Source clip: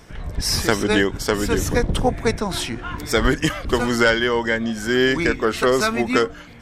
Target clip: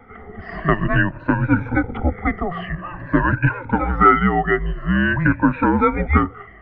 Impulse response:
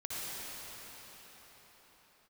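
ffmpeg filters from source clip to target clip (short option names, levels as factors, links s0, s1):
-af "afftfilt=real='re*pow(10,18/40*sin(2*PI*(1.6*log(max(b,1)*sr/1024/100)/log(2)-(-0.49)*(pts-256)/sr)))':imag='im*pow(10,18/40*sin(2*PI*(1.6*log(max(b,1)*sr/1024/100)/log(2)-(-0.49)*(pts-256)/sr)))':win_size=1024:overlap=0.75,highpass=f=210:t=q:w=0.5412,highpass=f=210:t=q:w=1.307,lowpass=f=2300:t=q:w=0.5176,lowpass=f=2300:t=q:w=0.7071,lowpass=f=2300:t=q:w=1.932,afreqshift=-180"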